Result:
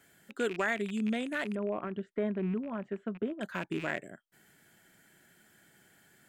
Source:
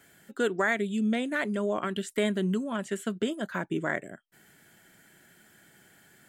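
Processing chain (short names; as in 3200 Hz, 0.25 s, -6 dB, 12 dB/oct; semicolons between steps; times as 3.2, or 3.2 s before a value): rattling part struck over -44 dBFS, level -27 dBFS; 1.55–3.41 LPF 1200 Hz 12 dB/oct; gain -4.5 dB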